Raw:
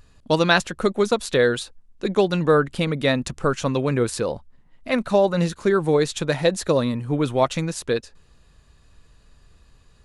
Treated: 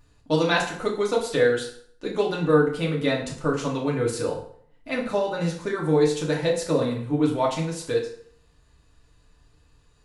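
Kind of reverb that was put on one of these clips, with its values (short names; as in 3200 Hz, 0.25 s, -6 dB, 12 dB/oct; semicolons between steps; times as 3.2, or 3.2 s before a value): FDN reverb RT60 0.59 s, low-frequency decay 0.85×, high-frequency decay 0.8×, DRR -3.5 dB; gain -8.5 dB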